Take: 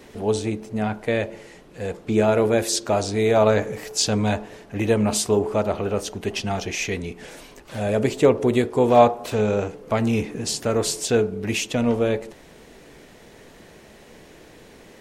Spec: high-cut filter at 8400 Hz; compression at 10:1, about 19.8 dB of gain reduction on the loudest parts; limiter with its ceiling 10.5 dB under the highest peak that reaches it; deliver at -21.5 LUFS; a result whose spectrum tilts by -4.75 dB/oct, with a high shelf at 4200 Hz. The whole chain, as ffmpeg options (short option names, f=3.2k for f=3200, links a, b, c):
-af "lowpass=8.4k,highshelf=f=4.2k:g=-4.5,acompressor=threshold=-30dB:ratio=10,volume=16.5dB,alimiter=limit=-11dB:level=0:latency=1"